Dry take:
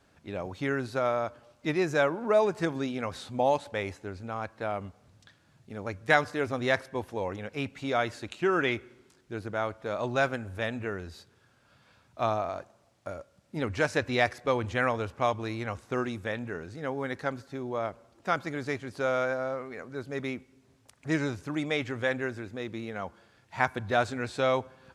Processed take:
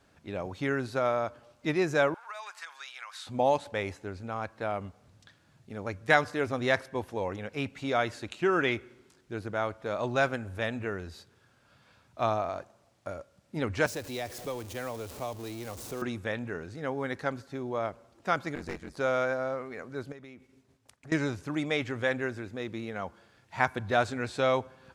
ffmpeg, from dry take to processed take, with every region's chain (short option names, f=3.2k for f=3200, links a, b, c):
-filter_complex "[0:a]asettb=1/sr,asplit=3[a][b][c];[a]atrim=end=2.144[d];[b]atrim=start=2.14:end=3.27,asetpts=PTS-STARTPTS,afade=t=in:d=0.004:c=qsin,afade=t=out:st=1.126:d=0.004:c=qsin,highpass=f=1.1k:w=0.5412,highpass=f=1.1k:w=1.3066,acompressor=threshold=-37dB:ratio=6:attack=3.2:release=140:knee=1:detection=peak[e];[c]atrim=start=3.266[f];[d][e]acrossfade=d=0.004:c1=hsin:c2=qsin[g];[g][f]acrossfade=d=0.004:c1=qsin:c2=hsin,asettb=1/sr,asplit=3[h][i][j];[h]atrim=end=13.864[k];[i]atrim=start=13.86:end=16.02,asetpts=PTS-STARTPTS,afade=t=in:d=0.004:c=qsin,afade=t=out:st=2.156:d=0.004:c=qsin,aeval=exprs='val(0)+0.5*0.0237*sgn(val(0))':c=same,equalizer=f=1.6k:t=o:w=2.5:g=-13.5,acrossover=split=330|670[l][m][n];[l]acompressor=threshold=-46dB:ratio=4[o];[m]acompressor=threshold=-39dB:ratio=4[p];[n]acompressor=threshold=-36dB:ratio=4[q];[o][p][q]amix=inputs=3:normalize=0[r];[j]atrim=start=16.016[s];[k][r]acrossfade=d=0.004:c1=hsin:c2=qsin[t];[t][s]acrossfade=d=0.004:c1=qsin:c2=hsin,asettb=1/sr,asplit=3[u][v][w];[u]atrim=end=18.554[x];[v]atrim=start=18.55:end=18.97,asetpts=PTS-STARTPTS,afade=t=in:d=0.004:c=qsin,afade=t=out:st=0.416:d=0.004:c=qsin,equalizer=f=3k:t=o:w=0.4:g=-8.5,aeval=exprs='val(0)*sin(2*PI*45*n/s)':c=same,aeval=exprs='clip(val(0),-1,0.0112)':c=same[y];[w]atrim=start=18.966[z];[x][y]acrossfade=d=0.004:c1=hsin:c2=qsin[aa];[aa][z]acrossfade=d=0.004:c1=qsin:c2=hsin,asettb=1/sr,asplit=3[ab][ac][ad];[ab]atrim=end=20.124[ae];[ac]atrim=start=20.12:end=21.12,asetpts=PTS-STARTPTS,afade=t=in:d=0.004:c=qsin,afade=t=out:st=0.996:d=0.004:c=qsin,acompressor=threshold=-47dB:ratio=4:attack=3.2:release=140:knee=1:detection=peak,agate=range=-33dB:threshold=-60dB:ratio=3:release=100:detection=peak[af];[ad]atrim=start=21.116[ag];[ae][af]acrossfade=d=0.004:c1=hsin:c2=qsin[ah];[ah][ag]acrossfade=d=0.004:c1=qsin:c2=hsin"